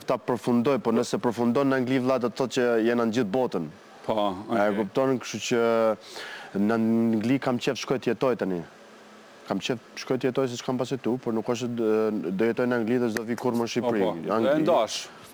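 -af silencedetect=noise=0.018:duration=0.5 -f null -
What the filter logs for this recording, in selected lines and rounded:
silence_start: 8.62
silence_end: 9.48 | silence_duration: 0.86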